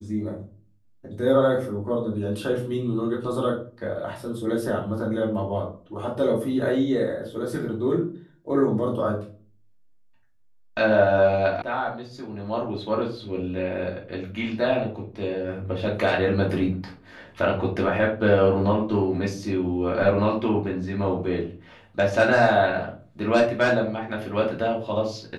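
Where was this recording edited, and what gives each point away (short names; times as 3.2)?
11.62 sound cut off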